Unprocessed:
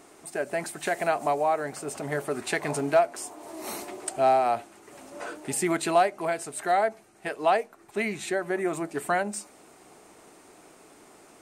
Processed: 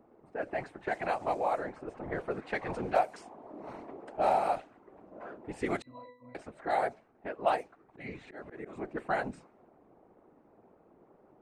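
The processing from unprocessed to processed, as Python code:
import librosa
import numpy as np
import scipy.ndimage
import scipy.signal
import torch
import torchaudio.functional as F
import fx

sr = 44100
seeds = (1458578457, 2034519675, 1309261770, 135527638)

y = fx.env_lowpass(x, sr, base_hz=740.0, full_db=-18.5)
y = fx.whisperise(y, sr, seeds[0])
y = fx.octave_resonator(y, sr, note='B', decay_s=0.41, at=(5.82, 6.35))
y = fx.auto_swell(y, sr, attack_ms=224.0, at=(7.54, 8.89), fade=0.02)
y = F.gain(torch.from_numpy(y), -6.0).numpy()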